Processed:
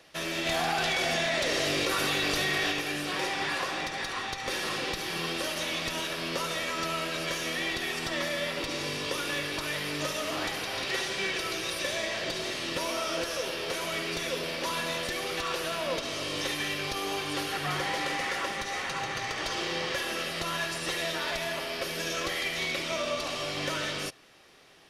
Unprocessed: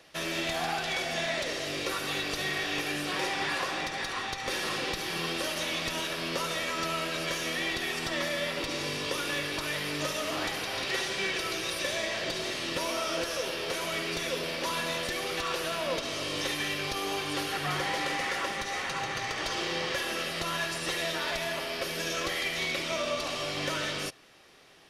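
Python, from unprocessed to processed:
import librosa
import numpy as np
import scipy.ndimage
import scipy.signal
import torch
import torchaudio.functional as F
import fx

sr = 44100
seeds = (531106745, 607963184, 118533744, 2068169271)

y = fx.env_flatten(x, sr, amount_pct=100, at=(0.45, 2.71), fade=0.02)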